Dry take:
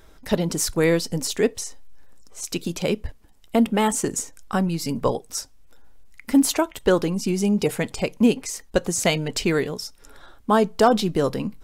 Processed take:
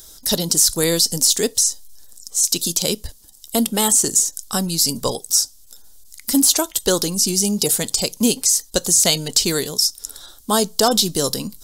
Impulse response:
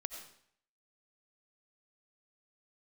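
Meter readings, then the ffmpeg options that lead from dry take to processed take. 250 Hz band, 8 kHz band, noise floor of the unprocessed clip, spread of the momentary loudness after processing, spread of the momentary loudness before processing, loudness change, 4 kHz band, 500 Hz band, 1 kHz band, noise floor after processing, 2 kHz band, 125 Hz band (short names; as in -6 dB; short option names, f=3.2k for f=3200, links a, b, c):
-1.0 dB, +14.0 dB, -50 dBFS, 9 LU, 11 LU, +5.5 dB, +12.0 dB, -1.0 dB, -1.0 dB, -46 dBFS, -1.5 dB, -1.0 dB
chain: -filter_complex "[0:a]aexciter=amount=13.2:drive=3.8:freq=3.6k,acrossover=split=3200[a][b];[b]acompressor=threshold=-11dB:ratio=4:attack=1:release=60[c];[a][c]amix=inputs=2:normalize=0,volume=-1dB"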